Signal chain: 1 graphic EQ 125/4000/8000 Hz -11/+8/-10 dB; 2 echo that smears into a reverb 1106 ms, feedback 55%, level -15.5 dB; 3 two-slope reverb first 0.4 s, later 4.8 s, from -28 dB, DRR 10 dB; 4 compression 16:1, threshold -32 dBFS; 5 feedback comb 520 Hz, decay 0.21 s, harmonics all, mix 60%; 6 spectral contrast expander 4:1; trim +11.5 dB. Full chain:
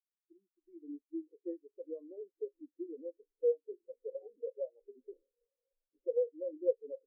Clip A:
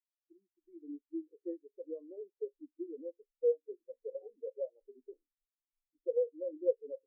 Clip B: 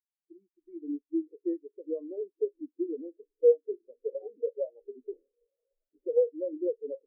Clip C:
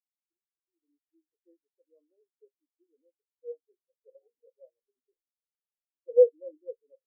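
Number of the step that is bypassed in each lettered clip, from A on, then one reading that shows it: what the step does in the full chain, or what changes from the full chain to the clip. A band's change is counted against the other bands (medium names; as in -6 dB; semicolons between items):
2, momentary loudness spread change -2 LU; 5, loudness change +7.5 LU; 4, mean gain reduction 2.0 dB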